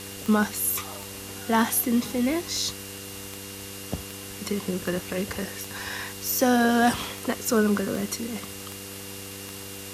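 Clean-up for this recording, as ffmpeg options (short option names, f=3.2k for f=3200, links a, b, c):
-af "adeclick=t=4,bandreject=f=98.3:t=h:w=4,bandreject=f=196.6:t=h:w=4,bandreject=f=294.9:t=h:w=4,bandreject=f=393.2:t=h:w=4,bandreject=f=491.5:t=h:w=4,bandreject=f=2.8k:w=30,afwtdn=0.011"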